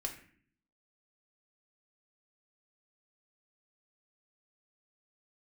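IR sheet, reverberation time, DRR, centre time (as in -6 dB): 0.55 s, 0.5 dB, 17 ms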